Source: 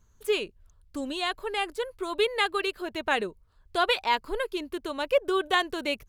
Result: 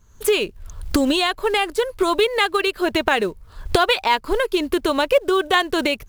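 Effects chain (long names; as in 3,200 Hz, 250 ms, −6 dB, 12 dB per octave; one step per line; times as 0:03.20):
camcorder AGC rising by 42 dB per second
in parallel at −6 dB: floating-point word with a short mantissa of 2 bits
on the sum: level +3 dB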